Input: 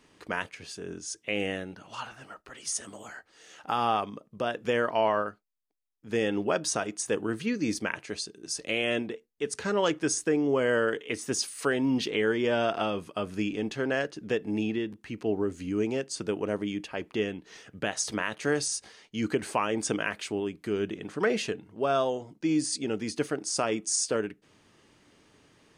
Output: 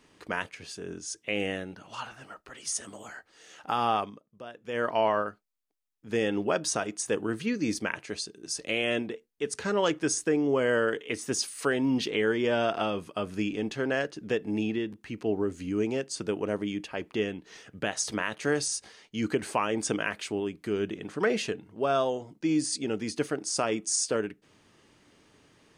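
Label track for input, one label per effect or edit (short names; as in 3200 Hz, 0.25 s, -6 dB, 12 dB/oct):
4.020000	4.860000	dip -13 dB, fades 0.19 s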